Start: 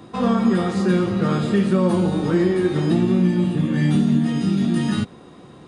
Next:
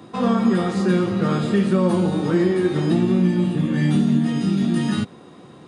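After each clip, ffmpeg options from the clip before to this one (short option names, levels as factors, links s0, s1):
-af "highpass=100"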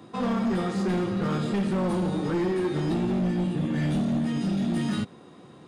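-af "asoftclip=type=hard:threshold=0.141,volume=0.562"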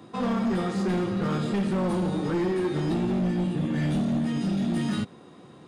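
-af anull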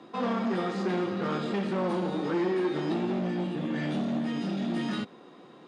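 -af "highpass=250,lowpass=5100"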